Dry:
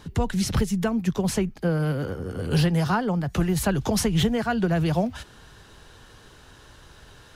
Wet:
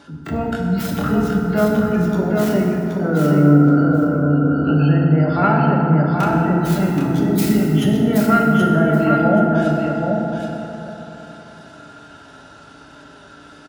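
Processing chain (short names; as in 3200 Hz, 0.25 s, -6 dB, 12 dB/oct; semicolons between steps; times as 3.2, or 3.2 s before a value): tracing distortion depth 0.35 ms; spectral gain 3.64–4.21, 460–1900 Hz -12 dB; HPF 51 Hz 12 dB/oct; spectral gate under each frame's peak -30 dB strong; low shelf 460 Hz -11.5 dB; tempo 0.56×; small resonant body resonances 210/300/610/1400 Hz, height 14 dB, ringing for 35 ms; on a send: feedback echo 0.745 s, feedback 15%, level -4 dB; on the sum: FDN reverb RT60 3.3 s, high-frequency decay 0.4×, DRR -2 dB; speed mistake 25 fps video run at 24 fps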